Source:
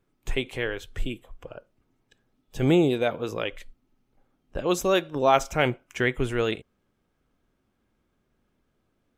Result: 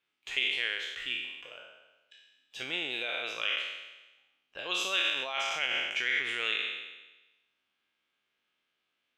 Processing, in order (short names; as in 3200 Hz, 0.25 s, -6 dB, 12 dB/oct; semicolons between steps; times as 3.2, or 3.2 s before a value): spectral trails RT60 1.11 s; limiter -15.5 dBFS, peak gain reduction 11.5 dB; band-pass 2900 Hz, Q 2.2; gain +5 dB